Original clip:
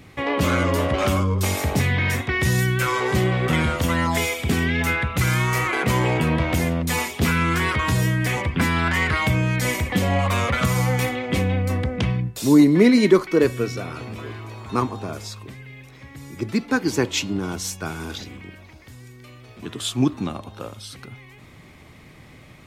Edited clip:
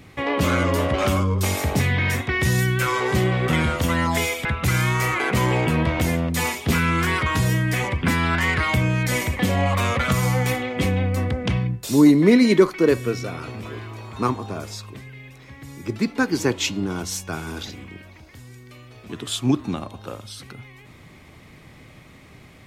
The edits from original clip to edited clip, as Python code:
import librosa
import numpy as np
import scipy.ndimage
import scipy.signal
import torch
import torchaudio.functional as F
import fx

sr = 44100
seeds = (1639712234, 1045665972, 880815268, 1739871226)

y = fx.edit(x, sr, fx.cut(start_s=4.45, length_s=0.53), tone=tone)